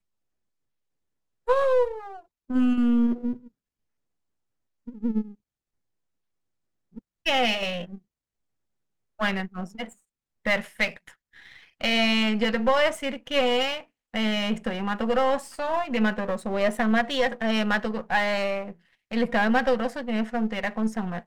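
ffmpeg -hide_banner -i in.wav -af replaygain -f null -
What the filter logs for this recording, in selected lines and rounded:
track_gain = +5.4 dB
track_peak = 0.275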